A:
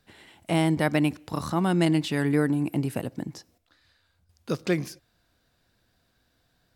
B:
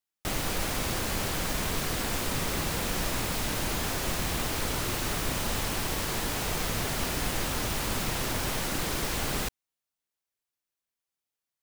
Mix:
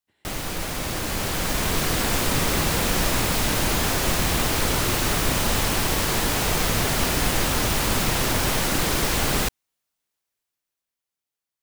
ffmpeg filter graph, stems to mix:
ffmpeg -i stem1.wav -i stem2.wav -filter_complex "[0:a]agate=range=-33dB:threshold=-56dB:ratio=3:detection=peak,volume=-18.5dB[link_01];[1:a]dynaudnorm=framelen=130:gausssize=21:maxgain=7.5dB,volume=0.5dB[link_02];[link_01][link_02]amix=inputs=2:normalize=0" out.wav

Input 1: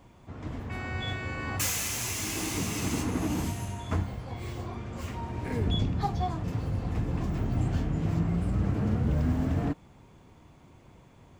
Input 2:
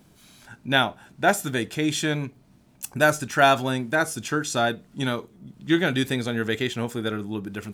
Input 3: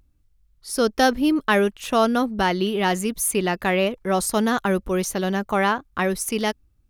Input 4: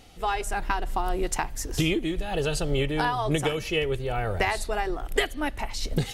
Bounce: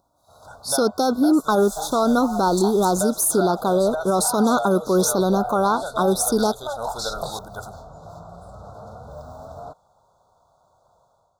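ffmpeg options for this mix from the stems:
ffmpeg -i stem1.wav -i stem2.wav -i stem3.wav -i stem4.wav -filter_complex "[0:a]volume=-12dB[link_01];[1:a]agate=range=-13dB:threshold=-50dB:ratio=16:detection=peak,volume=-5.5dB[link_02];[2:a]highpass=180,volume=8.5dB,asoftclip=hard,volume=-8.5dB,volume=0dB[link_03];[3:a]flanger=delay=22.5:depth=5:speed=2.8,aeval=exprs='0.211*sin(PI/2*2.51*val(0)/0.211)':channel_layout=same,adelay=1250,volume=-12dB[link_04];[link_01][link_02][link_04]amix=inputs=3:normalize=0,lowshelf=frequency=440:width_type=q:width=3:gain=-12.5,acompressor=threshold=-30dB:ratio=6,volume=0dB[link_05];[link_03][link_05]amix=inputs=2:normalize=0,dynaudnorm=framelen=120:gausssize=5:maxgain=9dB,asuperstop=centerf=2300:order=20:qfactor=1.1,alimiter=limit=-10.5dB:level=0:latency=1:release=14" out.wav

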